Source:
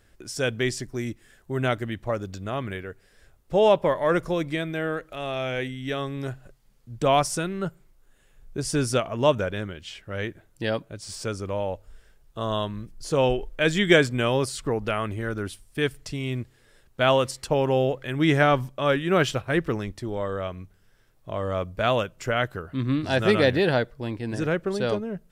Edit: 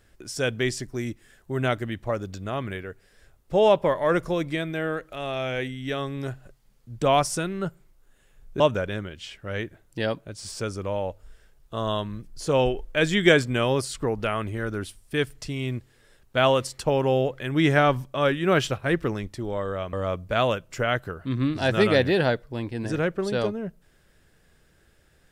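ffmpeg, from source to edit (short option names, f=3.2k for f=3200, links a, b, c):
-filter_complex "[0:a]asplit=3[a][b][c];[a]atrim=end=8.602[d];[b]atrim=start=9.238:end=20.572[e];[c]atrim=start=21.408[f];[d][e]acrossfade=d=0.004:c1=hsin:c2=hsin[g];[g][f]acrossfade=d=0.004:c1=hsin:c2=hsin"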